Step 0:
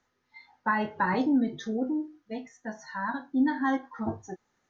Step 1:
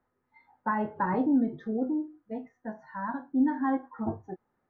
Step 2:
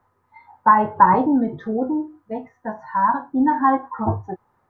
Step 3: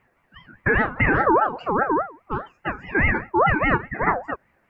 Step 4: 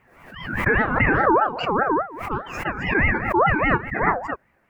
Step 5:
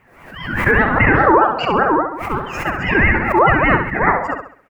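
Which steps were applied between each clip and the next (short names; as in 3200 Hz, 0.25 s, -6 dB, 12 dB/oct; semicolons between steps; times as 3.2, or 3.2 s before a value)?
LPF 1200 Hz 12 dB/oct
fifteen-band EQ 100 Hz +9 dB, 250 Hz -4 dB, 1000 Hz +10 dB; gain +8.5 dB
limiter -12.5 dBFS, peak gain reduction 11 dB; ring modulator with a swept carrier 850 Hz, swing 30%, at 4.9 Hz; gain +4 dB
backwards sustainer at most 65 dB/s
feedback echo 67 ms, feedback 39%, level -7 dB; gain +5 dB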